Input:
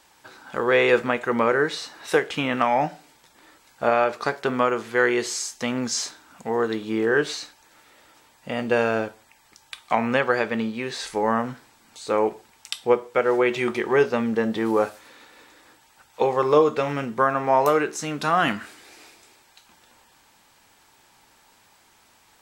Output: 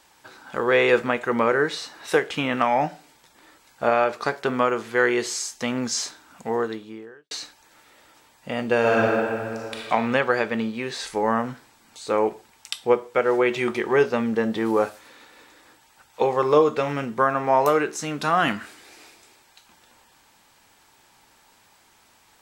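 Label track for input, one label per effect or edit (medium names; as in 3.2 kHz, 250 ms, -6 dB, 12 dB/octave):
6.540000	7.310000	fade out quadratic
8.790000	9.830000	reverb throw, RT60 2.3 s, DRR -4.5 dB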